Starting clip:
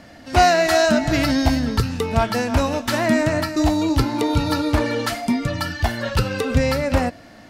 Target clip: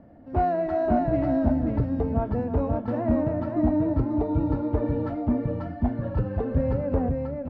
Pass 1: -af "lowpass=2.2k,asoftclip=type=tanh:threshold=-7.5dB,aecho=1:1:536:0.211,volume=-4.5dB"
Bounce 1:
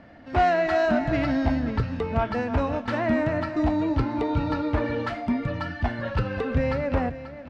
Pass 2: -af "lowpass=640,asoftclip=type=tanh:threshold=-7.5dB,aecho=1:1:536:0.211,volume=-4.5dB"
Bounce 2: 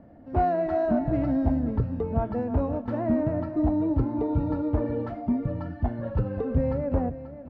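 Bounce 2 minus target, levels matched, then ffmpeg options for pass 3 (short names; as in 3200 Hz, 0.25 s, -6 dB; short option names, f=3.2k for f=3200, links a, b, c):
echo-to-direct -10 dB
-af "lowpass=640,asoftclip=type=tanh:threshold=-7.5dB,aecho=1:1:536:0.668,volume=-4.5dB"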